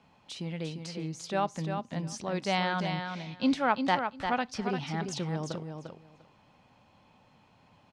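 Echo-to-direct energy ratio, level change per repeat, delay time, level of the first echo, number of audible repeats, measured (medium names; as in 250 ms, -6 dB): -6.5 dB, -16.5 dB, 348 ms, -6.5 dB, 2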